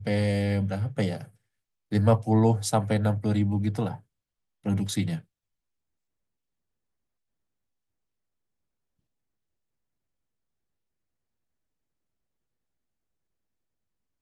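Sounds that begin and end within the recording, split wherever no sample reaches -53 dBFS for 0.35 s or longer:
1.91–4.01
4.64–5.24

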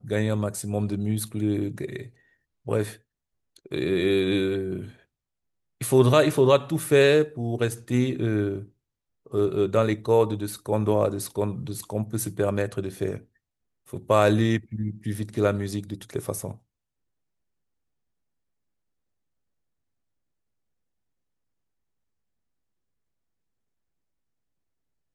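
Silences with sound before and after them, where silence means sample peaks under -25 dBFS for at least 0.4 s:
1.96–2.69
2.84–3.72
4.8–5.81
8.56–9.34
13.15–13.94

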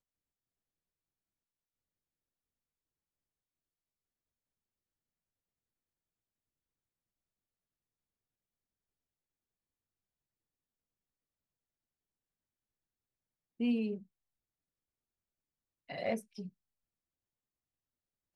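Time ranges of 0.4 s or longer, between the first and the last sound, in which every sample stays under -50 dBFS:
14.03–15.89

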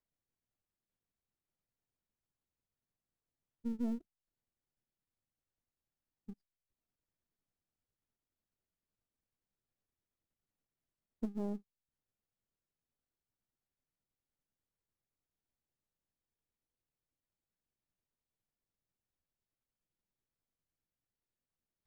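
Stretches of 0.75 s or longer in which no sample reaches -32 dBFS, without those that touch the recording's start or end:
3.95–11.23

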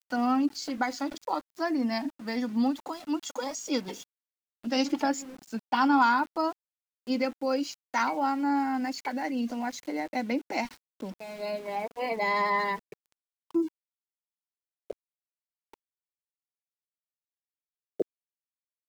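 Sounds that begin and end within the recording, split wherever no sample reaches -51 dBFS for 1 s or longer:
14.9–15.74

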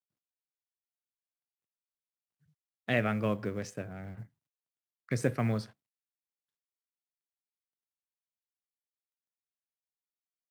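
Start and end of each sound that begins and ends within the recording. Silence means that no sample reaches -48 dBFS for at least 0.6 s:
2.88–4.25
5.09–5.66

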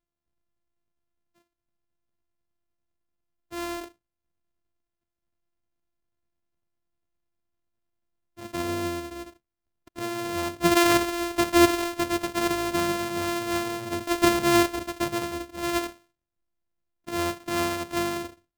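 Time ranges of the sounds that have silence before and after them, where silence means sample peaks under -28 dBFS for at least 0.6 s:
3.56–3.78
8.55–8.98
9.98–15.87

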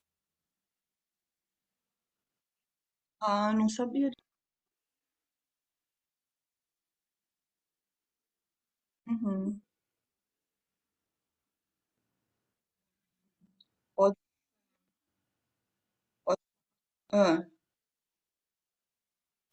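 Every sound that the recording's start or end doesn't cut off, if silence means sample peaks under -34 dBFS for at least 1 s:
3.22–4.09
9.1–9.52
13.98–14.12
16.27–17.41

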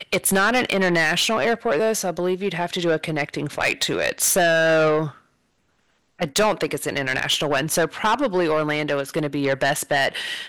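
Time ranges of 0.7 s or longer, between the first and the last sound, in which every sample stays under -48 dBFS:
5.2–6.19

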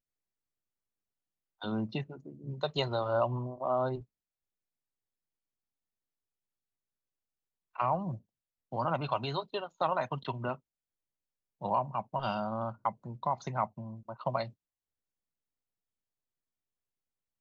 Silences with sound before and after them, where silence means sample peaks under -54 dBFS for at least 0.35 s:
4.04–7.75
8.2–8.72
10.58–11.61

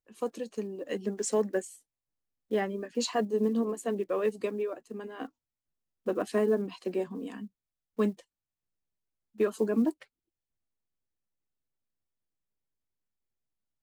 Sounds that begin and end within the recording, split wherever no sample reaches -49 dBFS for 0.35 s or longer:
2.51–5.28
6.06–7.47
7.99–8.21
9.36–10.04

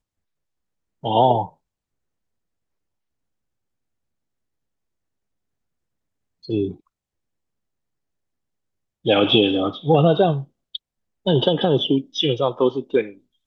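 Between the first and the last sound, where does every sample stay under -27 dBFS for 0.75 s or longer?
1.45–6.5
6.71–9.06

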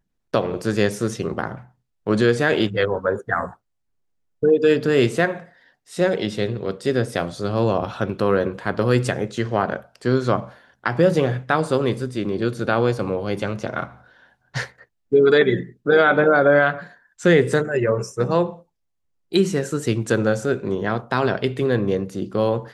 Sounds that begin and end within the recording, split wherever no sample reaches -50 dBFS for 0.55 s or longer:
4.42–18.63

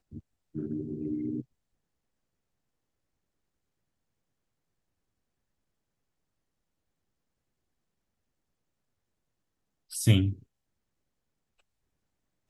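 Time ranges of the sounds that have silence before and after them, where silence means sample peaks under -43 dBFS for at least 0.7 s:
9.91–10.39

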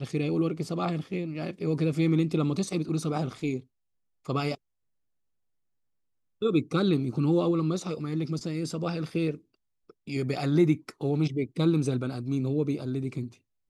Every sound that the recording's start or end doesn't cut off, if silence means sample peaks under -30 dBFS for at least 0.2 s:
4.29–4.54
6.42–9.34
10.09–13.25

